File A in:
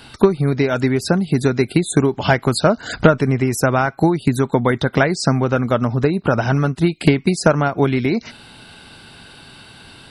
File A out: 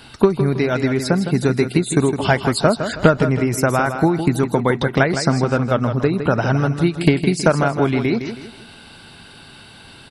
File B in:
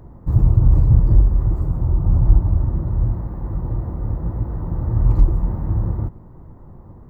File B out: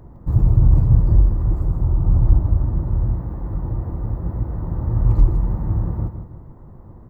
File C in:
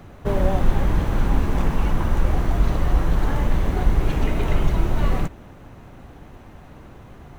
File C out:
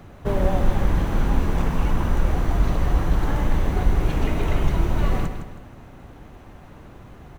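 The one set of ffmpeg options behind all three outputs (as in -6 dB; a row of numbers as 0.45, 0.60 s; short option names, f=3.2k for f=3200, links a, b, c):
-af "aecho=1:1:160|320|480|640:0.355|0.128|0.046|0.0166,volume=-1dB"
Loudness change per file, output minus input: -0.5, -0.5, -0.5 LU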